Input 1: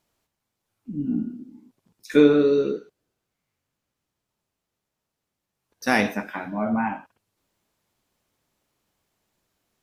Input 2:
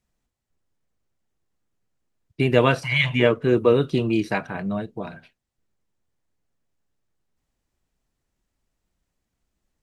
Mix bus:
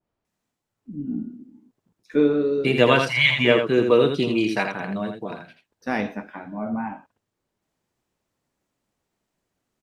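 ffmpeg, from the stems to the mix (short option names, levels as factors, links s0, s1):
-filter_complex "[0:a]lowpass=f=1100:p=1,volume=0.708[s0];[1:a]highpass=170,adelay=250,volume=1,asplit=2[s1][s2];[s2]volume=0.501,aecho=0:1:82:1[s3];[s0][s1][s3]amix=inputs=3:normalize=0,adynamicequalizer=threshold=0.01:dfrequency=3900:dqfactor=0.82:tfrequency=3900:tqfactor=0.82:attack=5:release=100:ratio=0.375:range=2.5:mode=boostabove:tftype=bell"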